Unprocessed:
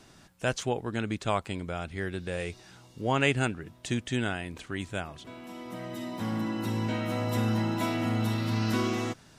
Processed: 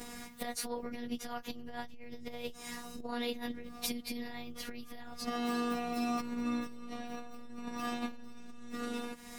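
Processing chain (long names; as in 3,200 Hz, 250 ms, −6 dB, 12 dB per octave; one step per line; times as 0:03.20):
partials spread apart or drawn together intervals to 113%
brickwall limiter −23 dBFS, peak gain reduction 9 dB
downward compressor 8 to 1, threshold −45 dBFS, peak gain reduction 17 dB
phases set to zero 240 Hz
saturating transformer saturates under 450 Hz
level +17 dB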